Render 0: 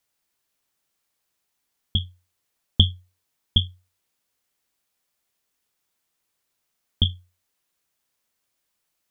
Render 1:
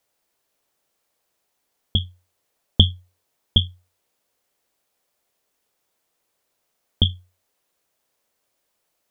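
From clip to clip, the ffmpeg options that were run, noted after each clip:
-af "equalizer=f=550:w=0.91:g=8.5,volume=1.26"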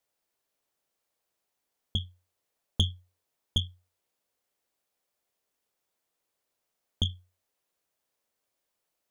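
-af "asoftclip=type=tanh:threshold=0.422,volume=0.376"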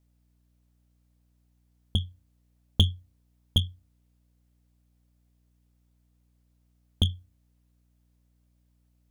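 -filter_complex "[0:a]aeval=exprs='val(0)+0.000282*(sin(2*PI*60*n/s)+sin(2*PI*2*60*n/s)/2+sin(2*PI*3*60*n/s)/3+sin(2*PI*4*60*n/s)/4+sin(2*PI*5*60*n/s)/5)':c=same,asplit=2[s0][s1];[s1]adynamicsmooth=sensitivity=3:basefreq=600,volume=0.891[s2];[s0][s2]amix=inputs=2:normalize=0"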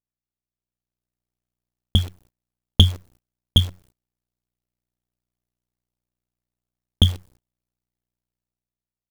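-af "acrusher=bits=8:dc=4:mix=0:aa=0.000001,dynaudnorm=f=270:g=7:m=2.99,agate=range=0.0398:threshold=0.00316:ratio=16:detection=peak"

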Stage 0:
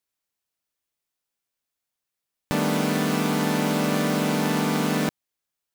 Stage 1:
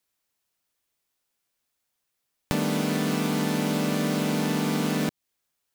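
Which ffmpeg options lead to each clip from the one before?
-filter_complex "[0:a]acrossover=split=520|2200|5800[s0][s1][s2][s3];[s0]acompressor=threshold=0.0316:ratio=4[s4];[s1]acompressor=threshold=0.00794:ratio=4[s5];[s2]acompressor=threshold=0.00708:ratio=4[s6];[s3]acompressor=threshold=0.00708:ratio=4[s7];[s4][s5][s6][s7]amix=inputs=4:normalize=0,volume=1.88"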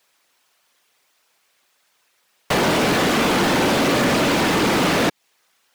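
-filter_complex "[0:a]afftfilt=real='hypot(re,im)*cos(2*PI*random(0))':imag='hypot(re,im)*sin(2*PI*random(1))':win_size=512:overlap=0.75,asplit=2[s0][s1];[s1]highpass=f=720:p=1,volume=20,asoftclip=type=tanh:threshold=0.141[s2];[s0][s2]amix=inputs=2:normalize=0,lowpass=f=3200:p=1,volume=0.501,volume=2.37"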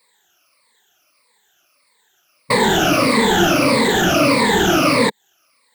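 -af "afftfilt=real='re*pow(10,21/40*sin(2*PI*(0.96*log(max(b,1)*sr/1024/100)/log(2)-(-1.6)*(pts-256)/sr)))':imag='im*pow(10,21/40*sin(2*PI*(0.96*log(max(b,1)*sr/1024/100)/log(2)-(-1.6)*(pts-256)/sr)))':win_size=1024:overlap=0.75,volume=0.841"

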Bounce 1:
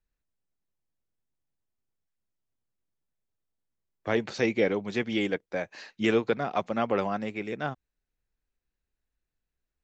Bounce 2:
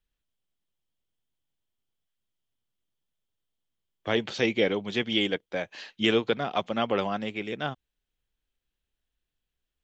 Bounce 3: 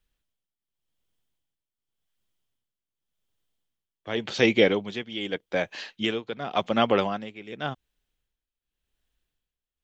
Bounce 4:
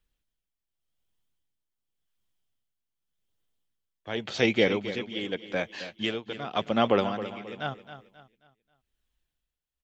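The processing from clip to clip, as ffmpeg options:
-af "equalizer=f=3200:w=3.3:g=12"
-af "tremolo=f=0.88:d=0.81,volume=1.88"
-af "aphaser=in_gain=1:out_gain=1:delay=1.6:decay=0.2:speed=0.58:type=triangular,aecho=1:1:268|536|804|1072:0.237|0.0854|0.0307|0.0111,volume=0.75"

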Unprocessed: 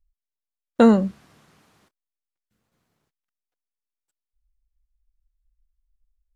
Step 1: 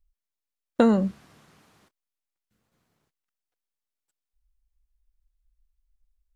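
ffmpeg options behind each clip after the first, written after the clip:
-af "acompressor=threshold=0.178:ratio=6"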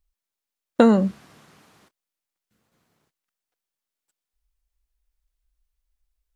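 -af "lowshelf=f=61:g=-11.5,volume=1.68"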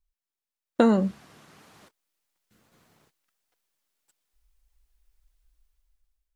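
-af "flanger=delay=0.9:depth=2.7:regen=78:speed=1.7:shape=triangular,dynaudnorm=f=250:g=7:m=4.73,volume=0.794"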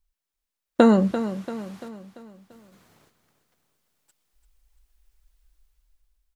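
-af "aecho=1:1:341|682|1023|1364|1705:0.266|0.128|0.0613|0.0294|0.0141,volume=1.58"

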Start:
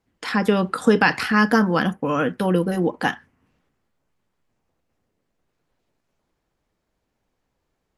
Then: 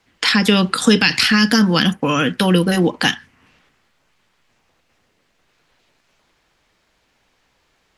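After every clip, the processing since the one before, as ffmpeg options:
-filter_complex "[0:a]equalizer=f=3100:w=0.33:g=13.5,acrossover=split=310|3000[s0][s1][s2];[s1]acompressor=threshold=0.0447:ratio=6[s3];[s0][s3][s2]amix=inputs=3:normalize=0,alimiter=level_in=2.37:limit=0.891:release=50:level=0:latency=1,volume=0.891"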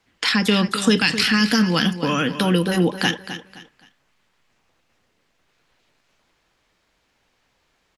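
-af "aecho=1:1:260|520|780:0.266|0.0798|0.0239,volume=0.631"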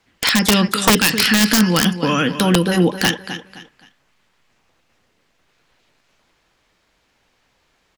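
-af "aeval=exprs='(mod(2.66*val(0)+1,2)-1)/2.66':c=same,volume=1.5"

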